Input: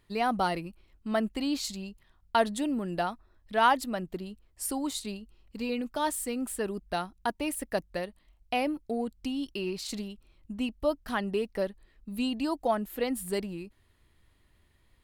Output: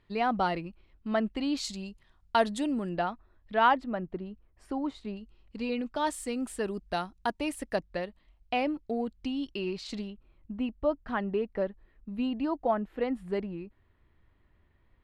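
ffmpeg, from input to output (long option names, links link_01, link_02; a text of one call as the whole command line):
ffmpeg -i in.wav -af "asetnsamples=nb_out_samples=441:pad=0,asendcmd='1.57 lowpass f 7700;2.89 lowpass f 3100;3.74 lowpass f 1800;5.17 lowpass f 4300;6.07 lowpass f 7200;7.76 lowpass f 4200;10.1 lowpass f 2000',lowpass=3700" out.wav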